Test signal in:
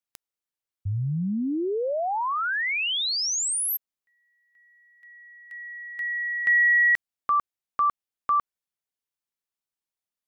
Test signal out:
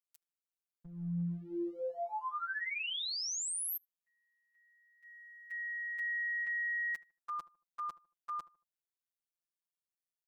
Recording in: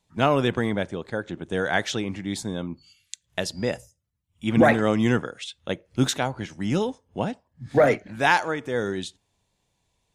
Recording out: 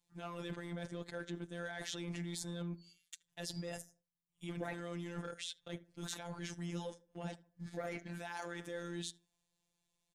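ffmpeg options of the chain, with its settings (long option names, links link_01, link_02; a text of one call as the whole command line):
ffmpeg -i in.wav -filter_complex "[0:a]agate=range=-10dB:threshold=-51dB:ratio=16:release=31:detection=peak,highshelf=frequency=4800:gain=7.5,areverse,acompressor=threshold=-32dB:ratio=20:attack=0.11:release=43:knee=6:detection=rms,areverse,afftfilt=real='hypot(re,im)*cos(PI*b)':imag='0':win_size=1024:overlap=0.75,asplit=2[link_01][link_02];[link_02]adelay=76,lowpass=frequency=1400:poles=1,volume=-18dB,asplit=2[link_03][link_04];[link_04]adelay=76,lowpass=frequency=1400:poles=1,volume=0.35,asplit=2[link_05][link_06];[link_06]adelay=76,lowpass=frequency=1400:poles=1,volume=0.35[link_07];[link_01][link_03][link_05][link_07]amix=inputs=4:normalize=0" out.wav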